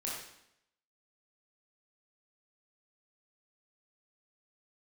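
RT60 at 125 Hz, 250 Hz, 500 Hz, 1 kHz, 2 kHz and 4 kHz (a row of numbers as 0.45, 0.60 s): 0.80, 0.85, 0.80, 0.75, 0.75, 0.75 s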